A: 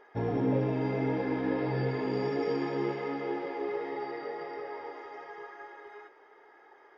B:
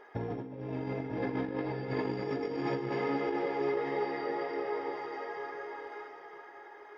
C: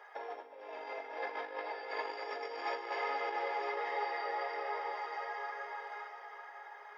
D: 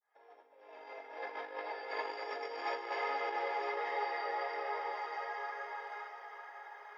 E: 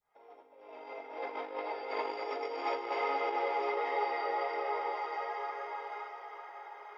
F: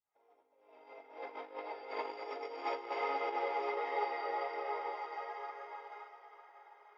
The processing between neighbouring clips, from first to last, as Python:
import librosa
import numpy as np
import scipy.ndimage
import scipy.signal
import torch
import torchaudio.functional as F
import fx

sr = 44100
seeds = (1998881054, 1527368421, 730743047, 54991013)

y1 = fx.over_compress(x, sr, threshold_db=-33.0, ratio=-0.5)
y1 = y1 + 10.0 ** (-8.0 / 20.0) * np.pad(y1, (int(953 * sr / 1000.0), 0))[:len(y1)]
y2 = scipy.signal.sosfilt(scipy.signal.cheby2(4, 60, 170.0, 'highpass', fs=sr, output='sos'), y1)
y2 = y2 * 10.0 ** (1.5 / 20.0)
y3 = fx.fade_in_head(y2, sr, length_s=1.82)
y4 = fx.bass_treble(y3, sr, bass_db=15, treble_db=-5)
y4 = fx.notch(y4, sr, hz=1700.0, q=5.5)
y4 = y4 * 10.0 ** (3.5 / 20.0)
y5 = fx.upward_expand(y4, sr, threshold_db=-53.0, expansion=1.5)
y5 = y5 * 10.0 ** (-2.0 / 20.0)